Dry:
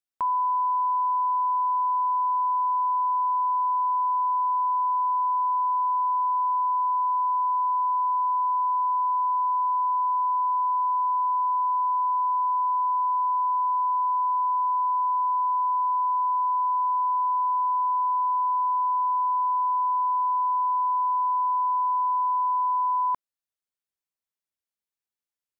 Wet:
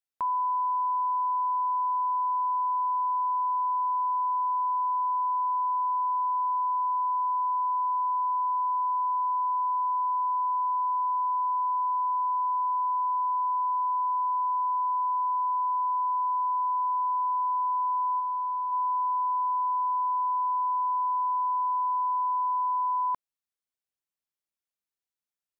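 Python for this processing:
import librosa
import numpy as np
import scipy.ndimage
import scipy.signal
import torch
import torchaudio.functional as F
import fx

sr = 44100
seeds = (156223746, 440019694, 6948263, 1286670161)

y = fx.highpass(x, sr, hz=fx.line((18.19, 930.0), (18.71, 1000.0)), slope=6, at=(18.19, 18.71), fade=0.02)
y = F.gain(torch.from_numpy(y), -3.0).numpy()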